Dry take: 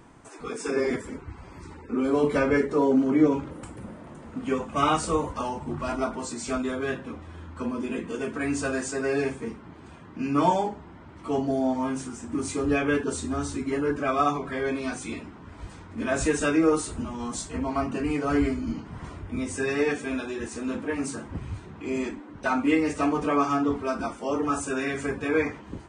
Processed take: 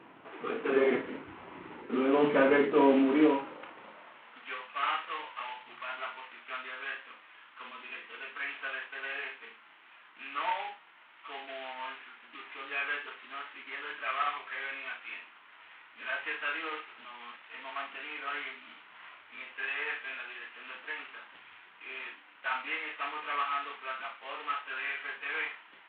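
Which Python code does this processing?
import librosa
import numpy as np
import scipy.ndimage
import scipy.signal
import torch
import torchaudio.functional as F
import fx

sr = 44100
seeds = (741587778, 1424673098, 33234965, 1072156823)

y = fx.cvsd(x, sr, bps=16000)
y = fx.filter_sweep_highpass(y, sr, from_hz=270.0, to_hz=1600.0, start_s=2.86, end_s=4.5, q=0.71)
y = fx.room_early_taps(y, sr, ms=(33, 55), db=(-7.5, -11.5))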